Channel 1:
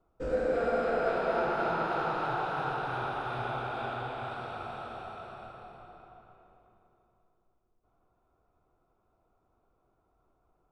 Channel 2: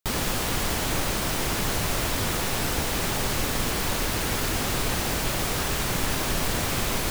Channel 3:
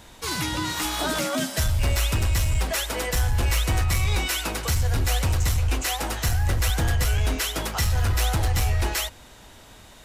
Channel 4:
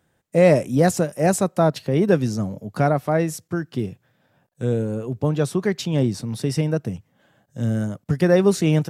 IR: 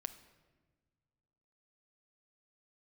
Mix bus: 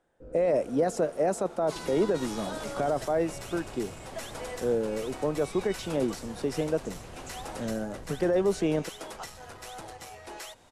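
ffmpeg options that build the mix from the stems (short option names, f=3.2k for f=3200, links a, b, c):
-filter_complex "[0:a]volume=-18.5dB[a];[1:a]alimiter=limit=-18.5dB:level=0:latency=1:release=261,adelay=550,volume=-12.5dB,asplit=2[b][c];[c]volume=-11.5dB[d];[2:a]highshelf=f=4.4k:g=6.5,acompressor=threshold=-23dB:ratio=6,adelay=1450,volume=-6.5dB[e];[3:a]volume=-1.5dB,asplit=2[f][g];[g]apad=whole_len=337654[h];[b][h]sidechaincompress=threshold=-20dB:ratio=8:attack=16:release=1290[i];[i][e][f]amix=inputs=3:normalize=0,highpass=560,alimiter=limit=-20.5dB:level=0:latency=1:release=12,volume=0dB[j];[d]aecho=0:1:1152|2304|3456|4608|5760:1|0.35|0.122|0.0429|0.015[k];[a][j][k]amix=inputs=3:normalize=0,lowpass=f=11k:w=0.5412,lowpass=f=11k:w=1.3066,tiltshelf=f=840:g=9.5"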